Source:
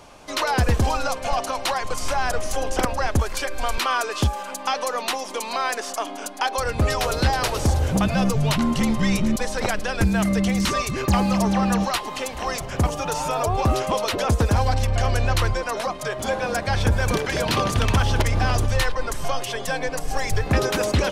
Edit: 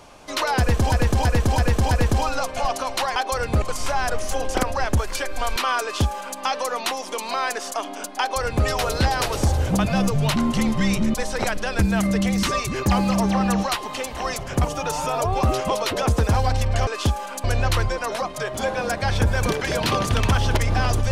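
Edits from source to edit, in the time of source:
0.59–0.92 s: loop, 5 plays
4.04–4.61 s: copy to 15.09 s
6.42–6.88 s: copy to 1.84 s

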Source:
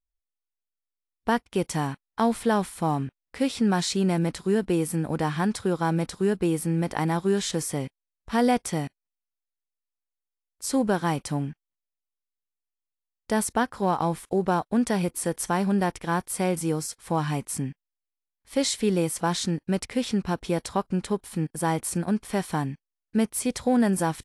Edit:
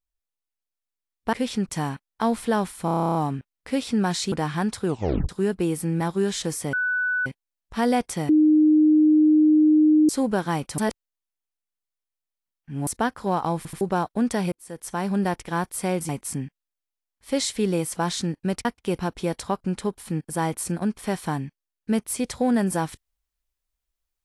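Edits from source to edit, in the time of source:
1.33–1.67 s: swap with 19.89–20.25 s
2.83 s: stutter 0.03 s, 11 plays
4.00–5.14 s: delete
5.68 s: tape stop 0.43 s
6.83–7.10 s: delete
7.82 s: add tone 1.49 kHz -21 dBFS 0.53 s
8.85–10.65 s: bleep 307 Hz -13 dBFS
11.34–13.43 s: reverse
14.13 s: stutter in place 0.08 s, 3 plays
15.08–15.72 s: fade in
16.65–17.33 s: delete

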